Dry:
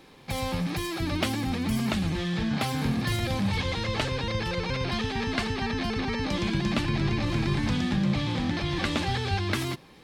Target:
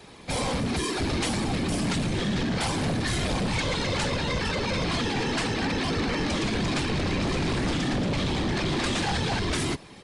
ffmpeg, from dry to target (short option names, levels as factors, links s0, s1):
-filter_complex "[0:a]afftfilt=real='hypot(re,im)*cos(2*PI*random(0))':imag='hypot(re,im)*sin(2*PI*random(1))':win_size=512:overlap=0.75,acrossover=split=160|1400|6900[s0][s1][s2][s3];[s3]acontrast=67[s4];[s0][s1][s2][s4]amix=inputs=4:normalize=0,aeval=exprs='0.133*sin(PI/2*3.98*val(0)/0.133)':c=same,aresample=22050,aresample=44100,volume=0.562"